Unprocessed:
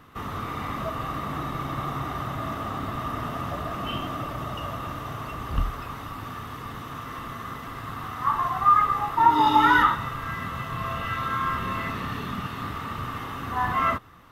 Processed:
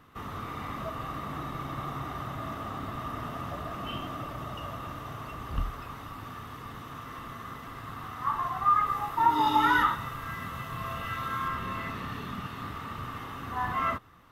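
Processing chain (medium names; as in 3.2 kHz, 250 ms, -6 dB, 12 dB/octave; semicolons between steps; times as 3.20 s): 8.86–11.48 s: treble shelf 6.9 kHz +6.5 dB; trim -5.5 dB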